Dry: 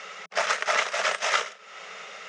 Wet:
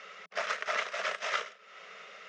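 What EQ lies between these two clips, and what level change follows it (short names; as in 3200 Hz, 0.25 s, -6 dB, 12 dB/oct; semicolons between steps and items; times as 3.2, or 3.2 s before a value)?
HPF 140 Hz; air absorption 100 m; bell 840 Hz -8 dB 0.28 oct; -6.5 dB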